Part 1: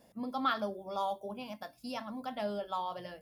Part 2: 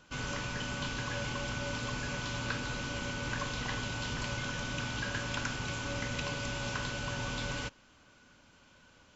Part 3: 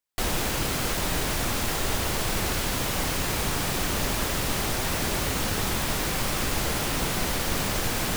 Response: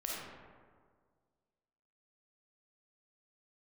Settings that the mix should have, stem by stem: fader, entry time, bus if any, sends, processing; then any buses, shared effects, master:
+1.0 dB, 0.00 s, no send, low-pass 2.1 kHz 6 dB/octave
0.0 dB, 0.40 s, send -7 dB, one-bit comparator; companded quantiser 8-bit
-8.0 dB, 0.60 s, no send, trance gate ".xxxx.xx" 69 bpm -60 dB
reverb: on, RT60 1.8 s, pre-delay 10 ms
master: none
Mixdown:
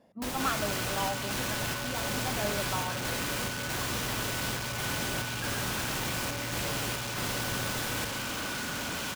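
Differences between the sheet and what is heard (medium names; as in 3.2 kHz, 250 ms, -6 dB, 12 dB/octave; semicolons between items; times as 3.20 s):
stem 3: entry 0.60 s -> 0.00 s; master: extra high-pass 79 Hz 6 dB/octave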